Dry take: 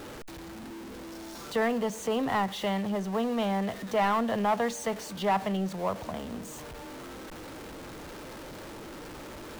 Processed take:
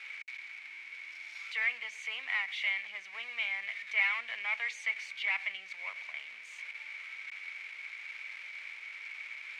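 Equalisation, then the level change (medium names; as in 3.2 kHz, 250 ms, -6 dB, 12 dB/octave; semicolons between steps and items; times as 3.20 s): ladder band-pass 2.3 kHz, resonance 90%; +9.0 dB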